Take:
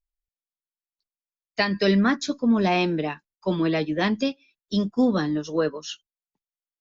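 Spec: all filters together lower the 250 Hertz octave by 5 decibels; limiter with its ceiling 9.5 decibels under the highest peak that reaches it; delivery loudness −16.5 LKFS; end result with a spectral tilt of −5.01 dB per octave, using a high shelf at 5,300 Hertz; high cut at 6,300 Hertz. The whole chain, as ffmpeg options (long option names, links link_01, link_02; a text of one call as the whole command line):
ffmpeg -i in.wav -af "lowpass=6300,equalizer=frequency=250:width_type=o:gain=-6.5,highshelf=frequency=5300:gain=7,volume=12.5dB,alimiter=limit=-5.5dB:level=0:latency=1" out.wav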